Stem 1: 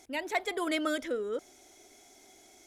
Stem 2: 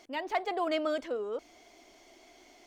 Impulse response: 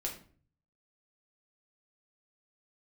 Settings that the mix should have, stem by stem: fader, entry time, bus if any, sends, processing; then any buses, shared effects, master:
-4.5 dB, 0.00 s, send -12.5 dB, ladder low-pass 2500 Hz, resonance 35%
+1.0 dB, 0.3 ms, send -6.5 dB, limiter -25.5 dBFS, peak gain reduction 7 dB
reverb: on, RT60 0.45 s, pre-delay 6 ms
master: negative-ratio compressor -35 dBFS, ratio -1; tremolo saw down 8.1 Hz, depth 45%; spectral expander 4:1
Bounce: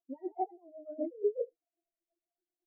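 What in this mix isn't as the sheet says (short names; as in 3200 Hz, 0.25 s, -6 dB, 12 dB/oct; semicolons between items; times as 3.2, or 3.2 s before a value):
stem 1 -4.5 dB -> -11.5 dB; stem 2: send -6.5 dB -> -0.5 dB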